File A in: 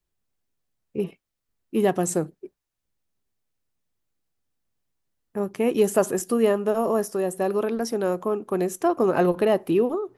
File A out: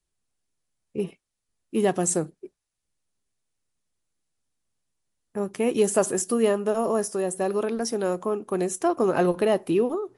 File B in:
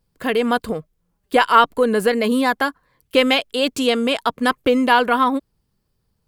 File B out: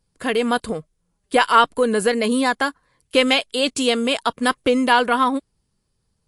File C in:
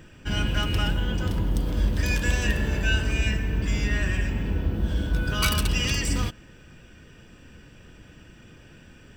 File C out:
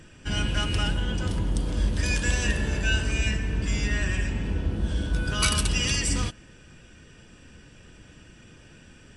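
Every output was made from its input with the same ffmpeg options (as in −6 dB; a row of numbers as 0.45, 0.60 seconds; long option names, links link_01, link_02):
-af "highshelf=frequency=5900:gain=9,volume=-1dB" -ar 24000 -c:a libmp3lame -b:a 56k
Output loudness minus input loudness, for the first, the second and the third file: −1.0, −1.0, −0.5 LU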